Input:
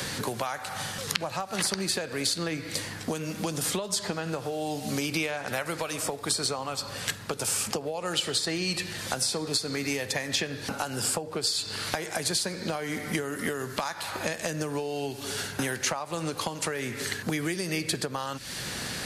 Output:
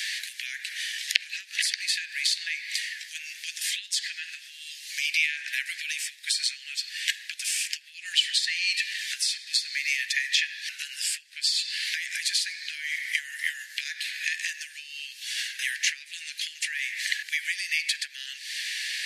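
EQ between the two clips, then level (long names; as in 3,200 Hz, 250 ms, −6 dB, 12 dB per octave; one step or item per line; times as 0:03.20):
high-shelf EQ 7,200 Hz −12 dB
dynamic equaliser 2,500 Hz, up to +4 dB, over −45 dBFS, Q 1.4
Butterworth high-pass 1,700 Hz 96 dB per octave
+5.5 dB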